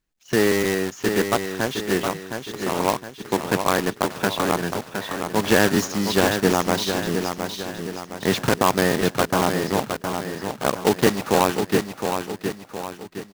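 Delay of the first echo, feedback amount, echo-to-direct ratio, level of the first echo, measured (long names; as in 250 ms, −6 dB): 714 ms, 45%, −5.5 dB, −6.5 dB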